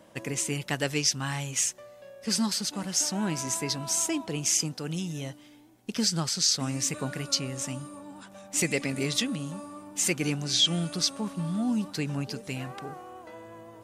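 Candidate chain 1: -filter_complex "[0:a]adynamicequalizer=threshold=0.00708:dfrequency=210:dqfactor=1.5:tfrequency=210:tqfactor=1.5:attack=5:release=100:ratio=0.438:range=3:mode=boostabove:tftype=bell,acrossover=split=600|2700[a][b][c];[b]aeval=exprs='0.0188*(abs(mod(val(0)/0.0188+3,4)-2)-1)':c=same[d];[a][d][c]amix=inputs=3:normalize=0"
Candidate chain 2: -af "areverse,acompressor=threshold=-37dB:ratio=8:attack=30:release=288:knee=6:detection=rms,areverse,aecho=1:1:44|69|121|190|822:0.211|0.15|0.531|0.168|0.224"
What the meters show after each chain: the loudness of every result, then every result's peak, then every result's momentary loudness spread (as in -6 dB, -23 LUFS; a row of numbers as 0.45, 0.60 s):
-27.0, -38.5 LUFS; -11.5, -22.0 dBFS; 16, 7 LU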